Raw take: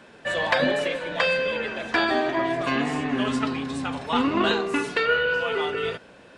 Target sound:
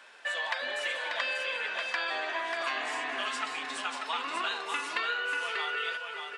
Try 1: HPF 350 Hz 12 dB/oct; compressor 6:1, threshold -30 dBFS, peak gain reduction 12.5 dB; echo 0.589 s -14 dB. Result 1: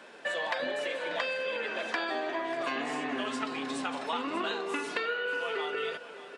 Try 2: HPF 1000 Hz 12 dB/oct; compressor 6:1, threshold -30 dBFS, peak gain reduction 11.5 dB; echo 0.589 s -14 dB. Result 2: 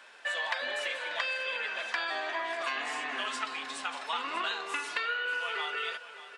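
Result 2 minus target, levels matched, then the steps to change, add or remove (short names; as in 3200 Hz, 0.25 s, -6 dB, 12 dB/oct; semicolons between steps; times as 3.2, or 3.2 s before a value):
echo-to-direct -9 dB
change: echo 0.589 s -5 dB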